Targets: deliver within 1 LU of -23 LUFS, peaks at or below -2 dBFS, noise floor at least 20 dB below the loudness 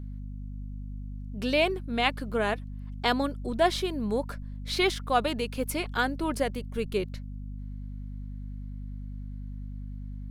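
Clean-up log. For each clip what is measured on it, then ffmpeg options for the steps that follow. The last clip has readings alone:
hum 50 Hz; harmonics up to 250 Hz; hum level -35 dBFS; loudness -29.5 LUFS; peak -9.0 dBFS; loudness target -23.0 LUFS
-> -af "bandreject=f=50:t=h:w=4,bandreject=f=100:t=h:w=4,bandreject=f=150:t=h:w=4,bandreject=f=200:t=h:w=4,bandreject=f=250:t=h:w=4"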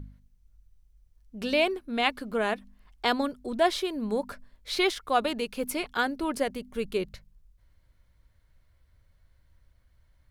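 hum none; loudness -29.0 LUFS; peak -9.0 dBFS; loudness target -23.0 LUFS
-> -af "volume=6dB"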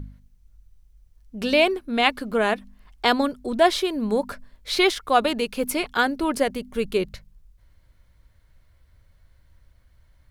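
loudness -23.0 LUFS; peak -3.0 dBFS; noise floor -59 dBFS

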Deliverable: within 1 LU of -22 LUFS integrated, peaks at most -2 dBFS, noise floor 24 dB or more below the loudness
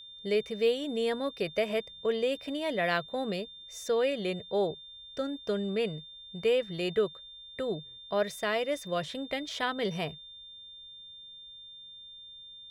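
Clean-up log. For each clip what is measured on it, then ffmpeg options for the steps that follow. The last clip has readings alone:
steady tone 3600 Hz; tone level -46 dBFS; loudness -31.5 LUFS; peak -15.0 dBFS; loudness target -22.0 LUFS
-> -af "bandreject=f=3.6k:w=30"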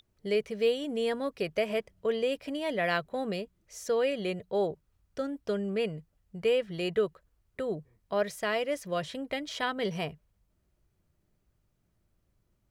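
steady tone none; loudness -31.5 LUFS; peak -15.0 dBFS; loudness target -22.0 LUFS
-> -af "volume=9.5dB"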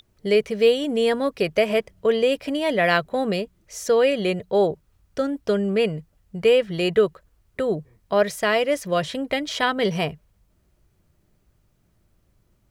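loudness -22.5 LUFS; peak -5.5 dBFS; noise floor -65 dBFS

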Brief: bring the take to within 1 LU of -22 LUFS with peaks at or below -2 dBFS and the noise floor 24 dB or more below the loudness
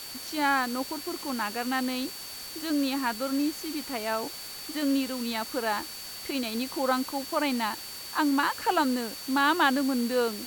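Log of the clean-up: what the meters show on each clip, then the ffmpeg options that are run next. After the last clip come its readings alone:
steady tone 4500 Hz; tone level -42 dBFS; noise floor -40 dBFS; noise floor target -53 dBFS; loudness -28.5 LUFS; peak -11.0 dBFS; loudness target -22.0 LUFS
-> -af "bandreject=f=4.5k:w=30"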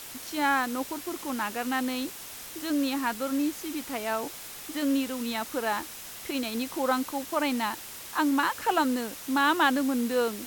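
steady tone none; noise floor -42 dBFS; noise floor target -53 dBFS
-> -af "afftdn=nr=11:nf=-42"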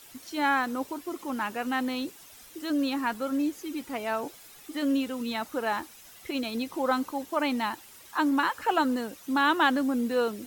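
noise floor -51 dBFS; noise floor target -53 dBFS
-> -af "afftdn=nr=6:nf=-51"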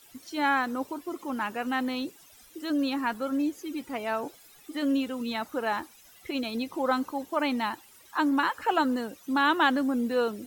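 noise floor -55 dBFS; loudness -29.0 LUFS; peak -11.0 dBFS; loudness target -22.0 LUFS
-> -af "volume=7dB"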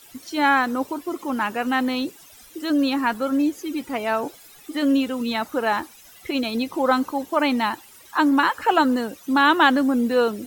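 loudness -22.0 LUFS; peak -4.0 dBFS; noise floor -48 dBFS

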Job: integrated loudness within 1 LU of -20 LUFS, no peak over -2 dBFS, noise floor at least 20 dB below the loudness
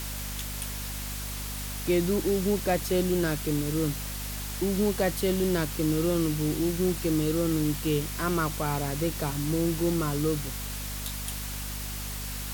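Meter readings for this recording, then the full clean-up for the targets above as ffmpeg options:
hum 50 Hz; harmonics up to 250 Hz; hum level -35 dBFS; noise floor -35 dBFS; noise floor target -49 dBFS; loudness -28.5 LUFS; peak -14.0 dBFS; loudness target -20.0 LUFS
-> -af "bandreject=f=50:t=h:w=4,bandreject=f=100:t=h:w=4,bandreject=f=150:t=h:w=4,bandreject=f=200:t=h:w=4,bandreject=f=250:t=h:w=4"
-af "afftdn=nr=14:nf=-35"
-af "volume=8.5dB"

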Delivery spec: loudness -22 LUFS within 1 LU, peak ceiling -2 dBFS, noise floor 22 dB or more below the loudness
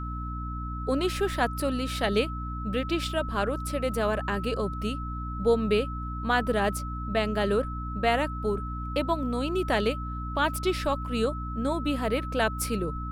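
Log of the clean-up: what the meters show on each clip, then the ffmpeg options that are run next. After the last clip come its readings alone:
hum 60 Hz; harmonics up to 300 Hz; hum level -32 dBFS; steady tone 1300 Hz; tone level -37 dBFS; loudness -28.5 LUFS; peak -11.5 dBFS; loudness target -22.0 LUFS
-> -af "bandreject=f=60:t=h:w=4,bandreject=f=120:t=h:w=4,bandreject=f=180:t=h:w=4,bandreject=f=240:t=h:w=4,bandreject=f=300:t=h:w=4"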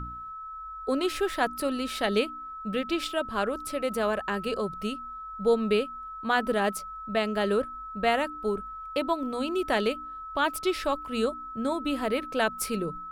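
hum none; steady tone 1300 Hz; tone level -37 dBFS
-> -af "bandreject=f=1.3k:w=30"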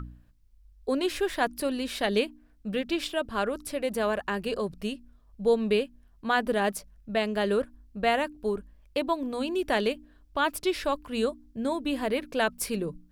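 steady tone none; loudness -29.5 LUFS; peak -12.0 dBFS; loudness target -22.0 LUFS
-> -af "volume=7.5dB"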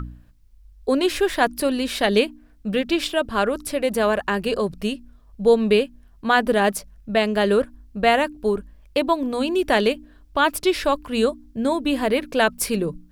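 loudness -22.0 LUFS; peak -4.5 dBFS; noise floor -51 dBFS

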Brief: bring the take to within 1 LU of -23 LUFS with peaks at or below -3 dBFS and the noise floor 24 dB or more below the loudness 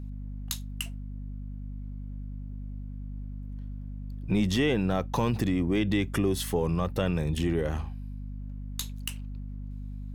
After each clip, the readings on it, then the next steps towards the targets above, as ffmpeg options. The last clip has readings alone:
hum 50 Hz; harmonics up to 250 Hz; hum level -35 dBFS; loudness -31.5 LUFS; peak -14.0 dBFS; loudness target -23.0 LUFS
-> -af "bandreject=f=50:t=h:w=4,bandreject=f=100:t=h:w=4,bandreject=f=150:t=h:w=4,bandreject=f=200:t=h:w=4,bandreject=f=250:t=h:w=4"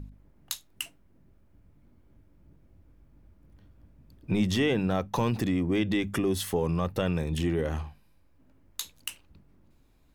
hum none; loudness -29.5 LUFS; peak -14.5 dBFS; loudness target -23.0 LUFS
-> -af "volume=6.5dB"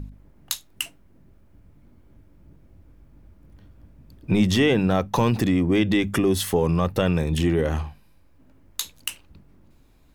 loudness -23.0 LUFS; peak -8.0 dBFS; noise floor -55 dBFS

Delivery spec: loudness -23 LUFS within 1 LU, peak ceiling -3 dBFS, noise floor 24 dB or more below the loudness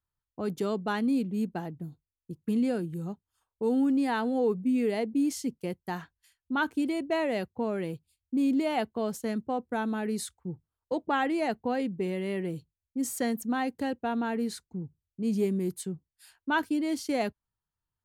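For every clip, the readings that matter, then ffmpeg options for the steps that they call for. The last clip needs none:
loudness -30.5 LUFS; peak -17.0 dBFS; loudness target -23.0 LUFS
-> -af "volume=7.5dB"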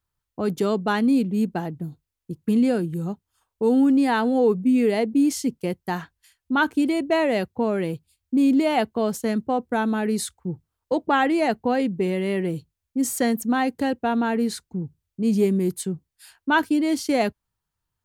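loudness -23.0 LUFS; peak -9.5 dBFS; noise floor -84 dBFS

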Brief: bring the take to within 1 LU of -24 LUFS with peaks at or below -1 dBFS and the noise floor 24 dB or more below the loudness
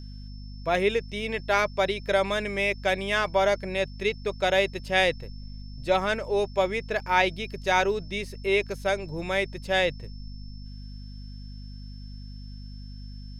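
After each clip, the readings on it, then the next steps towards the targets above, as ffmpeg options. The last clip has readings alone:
hum 50 Hz; harmonics up to 250 Hz; hum level -37 dBFS; steady tone 5300 Hz; tone level -52 dBFS; loudness -26.0 LUFS; peak -8.0 dBFS; loudness target -24.0 LUFS
-> -af "bandreject=f=50:t=h:w=6,bandreject=f=100:t=h:w=6,bandreject=f=150:t=h:w=6,bandreject=f=200:t=h:w=6,bandreject=f=250:t=h:w=6"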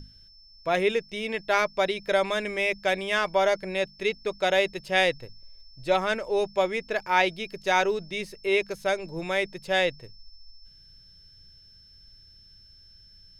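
hum none; steady tone 5300 Hz; tone level -52 dBFS
-> -af "bandreject=f=5.3k:w=30"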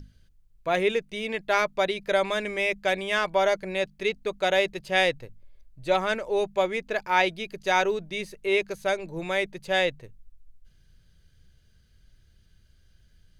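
steady tone none; loudness -26.0 LUFS; peak -7.5 dBFS; loudness target -24.0 LUFS
-> -af "volume=2dB"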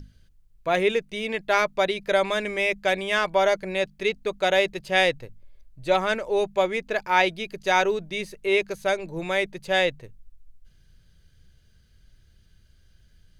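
loudness -24.0 LUFS; peak -5.5 dBFS; noise floor -59 dBFS

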